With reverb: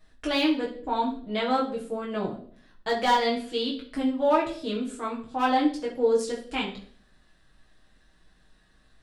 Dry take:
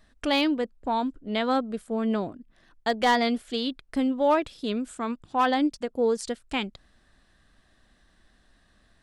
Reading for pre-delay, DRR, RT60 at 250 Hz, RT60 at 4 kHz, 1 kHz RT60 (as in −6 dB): 6 ms, −5.0 dB, 0.65 s, 0.50 s, 0.45 s